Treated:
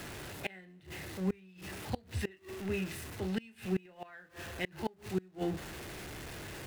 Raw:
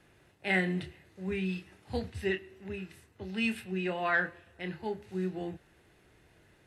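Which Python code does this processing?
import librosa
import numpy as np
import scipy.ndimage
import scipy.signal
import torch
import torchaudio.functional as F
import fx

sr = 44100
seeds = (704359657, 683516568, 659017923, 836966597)

y = x + 0.5 * 10.0 ** (-43.0 / 20.0) * np.sign(x)
y = fx.gate_flip(y, sr, shuts_db=-25.0, range_db=-28)
y = F.gain(torch.from_numpy(y), 3.0).numpy()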